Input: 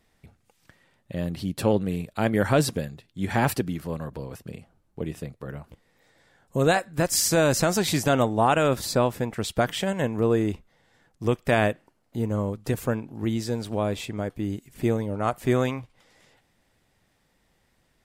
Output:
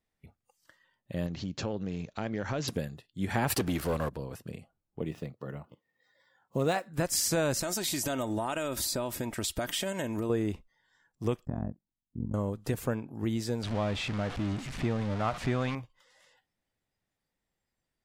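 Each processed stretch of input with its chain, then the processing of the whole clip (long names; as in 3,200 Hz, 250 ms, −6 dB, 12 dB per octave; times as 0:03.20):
0:01.26–0:02.68: downward compressor 3 to 1, threshold −28 dBFS + bad sample-rate conversion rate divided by 3×, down none, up filtered
0:03.50–0:04.09: parametric band 170 Hz −8 dB 1.3 octaves + leveller curve on the samples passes 3
0:05.01–0:06.90: running median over 5 samples + high-pass filter 94 Hz + notch filter 1,600 Hz, Q 9.4
0:07.59–0:10.30: high-shelf EQ 4,200 Hz +10 dB + comb filter 3.2 ms, depth 43% + downward compressor 8 to 1, threshold −24 dBFS
0:11.45–0:12.34: drawn EQ curve 220 Hz 0 dB, 470 Hz −19 dB, 2,900 Hz −16 dB, 6,500 Hz +13 dB + amplitude modulation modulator 45 Hz, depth 95% + low-pass with resonance 930 Hz, resonance Q 1.9
0:13.63–0:15.75: converter with a step at zero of −28.5 dBFS + low-pass filter 4,600 Hz + parametric band 400 Hz −6.5 dB 0.92 octaves
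whole clip: noise reduction from a noise print of the clip's start 15 dB; downward compressor 2 to 1, threshold −24 dBFS; level −3 dB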